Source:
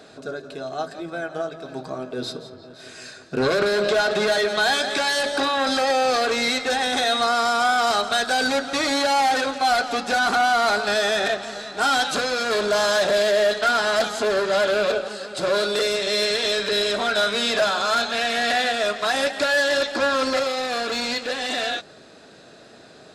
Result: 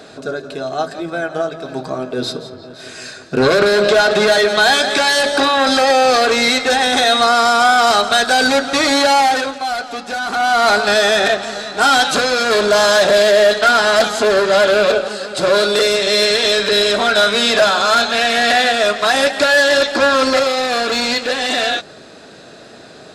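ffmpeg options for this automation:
-af "volume=7.5,afade=t=out:st=9.1:d=0.55:silence=0.334965,afade=t=in:st=10.28:d=0.43:silence=0.334965"

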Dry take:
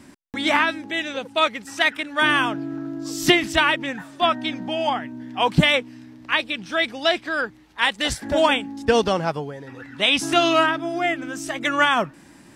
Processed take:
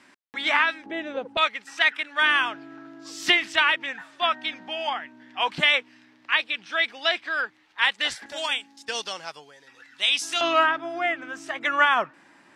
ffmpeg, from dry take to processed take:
-af "asetnsamples=n=441:p=0,asendcmd='0.86 bandpass f 570;1.37 bandpass f 2200;8.26 bandpass f 5400;10.41 bandpass f 1400',bandpass=f=2000:t=q:w=0.71:csg=0"

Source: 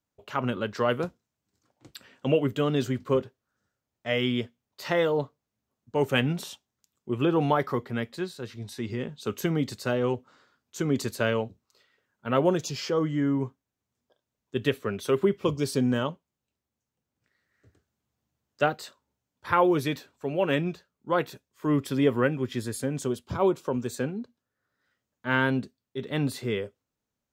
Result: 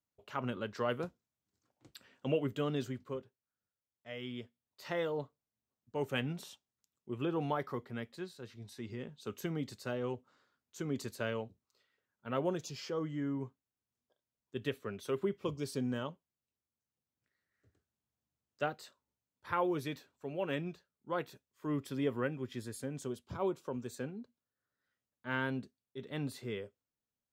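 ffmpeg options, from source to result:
-af "volume=0.794,afade=t=out:st=2.7:d=0.5:silence=0.354813,afade=t=in:st=4.15:d=0.81:silence=0.446684"

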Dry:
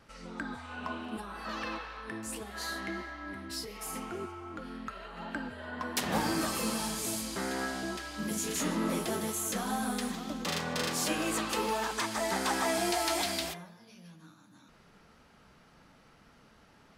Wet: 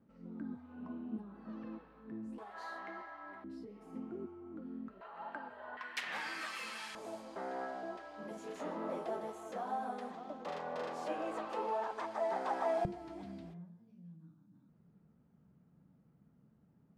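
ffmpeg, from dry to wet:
-af "asetnsamples=n=441:p=0,asendcmd='2.38 bandpass f 880;3.44 bandpass f 260;5.01 bandpass f 870;5.77 bandpass f 2100;6.95 bandpass f 670;12.85 bandpass f 160',bandpass=f=220:t=q:w=1.9:csg=0"

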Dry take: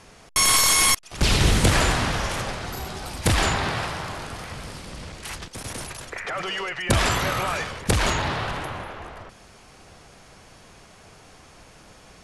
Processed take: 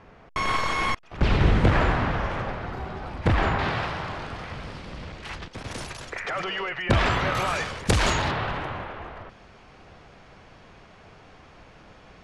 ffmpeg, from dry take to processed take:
-af "asetnsamples=n=441:p=0,asendcmd='3.59 lowpass f 3500;5.71 lowpass f 6600;6.44 lowpass f 3100;7.35 lowpass f 8400;8.31 lowpass f 3200',lowpass=1900"

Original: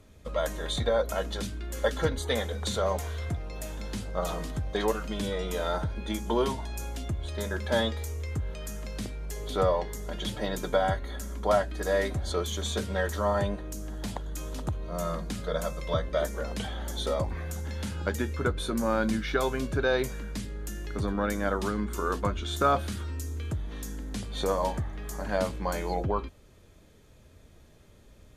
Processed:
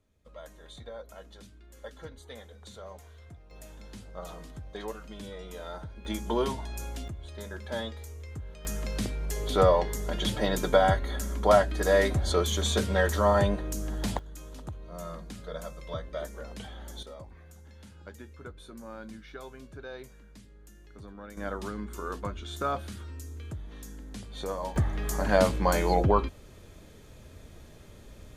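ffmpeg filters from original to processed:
-af "asetnsamples=n=441:p=0,asendcmd='3.51 volume volume -10.5dB;6.05 volume volume -1.5dB;7.08 volume volume -8dB;8.65 volume volume 4dB;14.19 volume volume -8dB;17.03 volume volume -16.5dB;21.37 volume volume -6.5dB;24.76 volume volume 6dB',volume=0.141"

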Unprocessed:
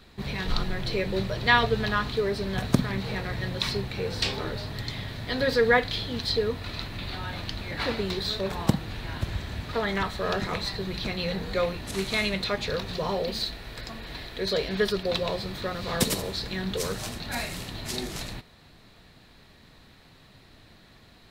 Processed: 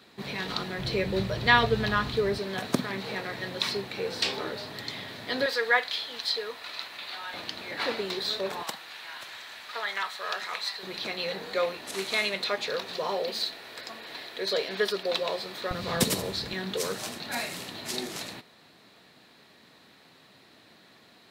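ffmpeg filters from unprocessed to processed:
-af "asetnsamples=n=441:p=0,asendcmd='0.79 highpass f 63;2.38 highpass f 260;5.46 highpass f 750;7.34 highpass f 330;8.63 highpass f 1000;10.83 highpass f 380;15.71 highpass f 100;16.53 highpass f 230',highpass=210"

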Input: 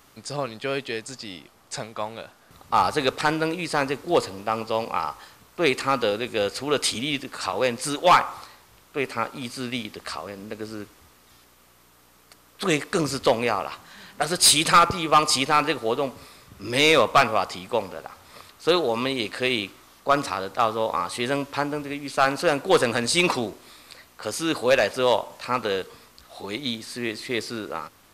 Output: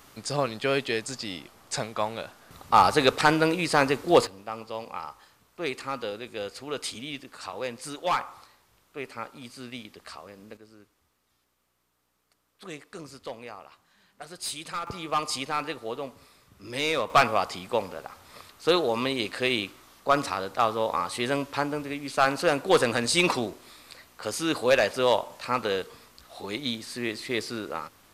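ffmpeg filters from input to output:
-af "asetnsamples=n=441:p=0,asendcmd='4.27 volume volume -10dB;10.57 volume volume -18dB;14.87 volume volume -9.5dB;17.1 volume volume -2dB',volume=1.26"

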